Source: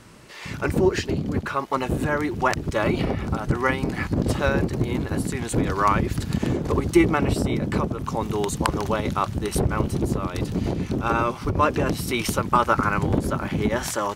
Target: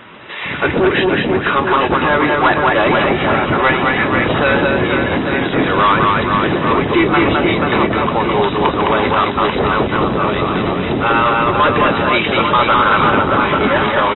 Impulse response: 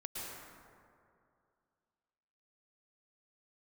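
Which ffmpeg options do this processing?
-filter_complex "[0:a]aecho=1:1:210|483|837.9|1299|1899:0.631|0.398|0.251|0.158|0.1,asplit=2[a][b];[b]highpass=f=720:p=1,volume=25dB,asoftclip=type=tanh:threshold=-0.5dB[c];[a][c]amix=inputs=2:normalize=0,lowpass=f=5.1k:p=1,volume=-6dB,volume=-3dB" -ar 22050 -c:a aac -b:a 16k

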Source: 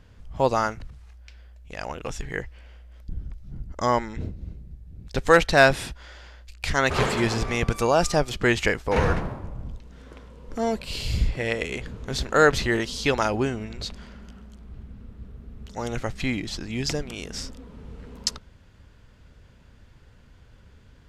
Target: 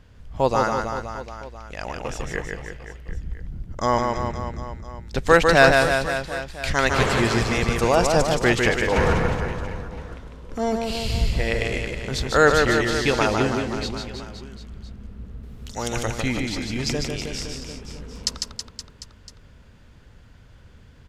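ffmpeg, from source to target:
-filter_complex "[0:a]asettb=1/sr,asplit=3[a][b][c];[a]atrim=end=15.434[d];[b]atrim=start=15.43:end=16.06,asetpts=PTS-STARTPTS,afade=t=in:d=0.004:c=qsin,afade=t=out:st=0.626:d=0.004:c=qsin,highshelf=f=2.9k:g=12[e];[c]atrim=start=16.056[f];[d][e]acrossfade=d=0.004:c1=hsin:c2=qsin[g];[g][f]acrossfade=d=0.004:c1=qsin:c2=hsin,aecho=1:1:150|322.5|520.9|749|1011:0.631|0.398|0.251|0.158|0.1,volume=1dB"

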